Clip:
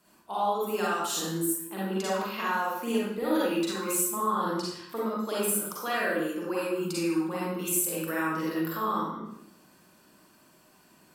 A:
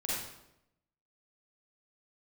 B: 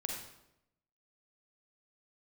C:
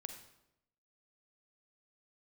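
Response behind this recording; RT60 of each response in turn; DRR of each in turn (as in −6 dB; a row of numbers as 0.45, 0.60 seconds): A; 0.85, 0.85, 0.85 seconds; −7.0, 0.5, 6.0 decibels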